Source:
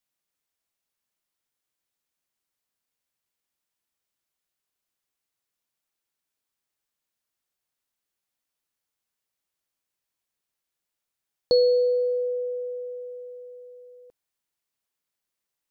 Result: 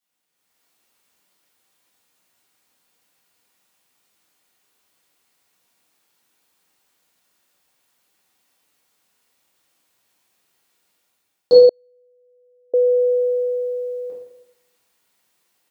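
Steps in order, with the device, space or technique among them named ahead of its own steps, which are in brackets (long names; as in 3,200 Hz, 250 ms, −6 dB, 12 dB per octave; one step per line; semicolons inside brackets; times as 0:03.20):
far laptop microphone (convolution reverb RT60 0.90 s, pre-delay 3 ms, DRR −8 dB; high-pass filter 150 Hz 6 dB per octave; automatic gain control gain up to 11.5 dB)
0:11.69–0:12.74: noise gate −2 dBFS, range −43 dB
level −1 dB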